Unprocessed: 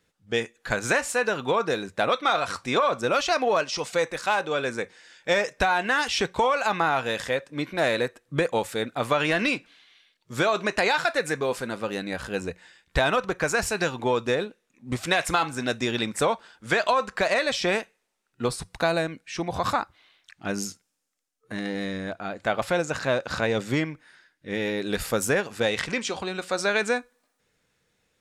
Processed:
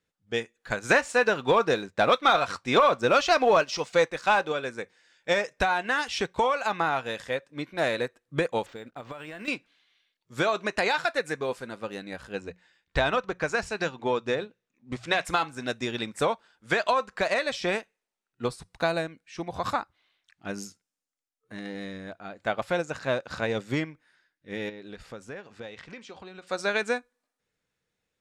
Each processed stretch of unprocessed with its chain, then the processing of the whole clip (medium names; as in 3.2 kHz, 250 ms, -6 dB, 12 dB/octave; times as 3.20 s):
0.90–4.52 s: low-pass 8.1 kHz + waveshaping leveller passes 1
8.66–9.48 s: compression 12:1, threshold -27 dBFS + hysteresis with a dead band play -53.5 dBFS + decimation joined by straight lines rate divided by 4×
12.32–15.25 s: low-pass 7 kHz + hum notches 60/120/180 Hz
24.69–26.47 s: compression 2.5:1, threshold -32 dBFS + distance through air 83 m
whole clip: treble shelf 12 kHz -6 dB; upward expansion 1.5:1, over -38 dBFS